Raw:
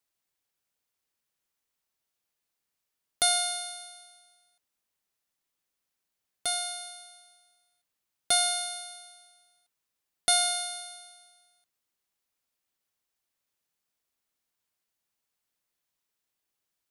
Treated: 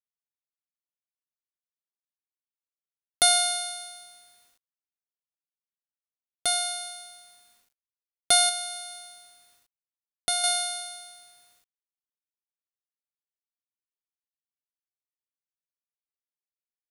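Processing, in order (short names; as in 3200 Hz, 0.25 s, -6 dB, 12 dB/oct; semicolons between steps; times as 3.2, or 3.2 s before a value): 8.49–10.44 compressor 1.5:1, threshold -42 dBFS, peak gain reduction 8 dB; bit-crush 11-bit; gain +4.5 dB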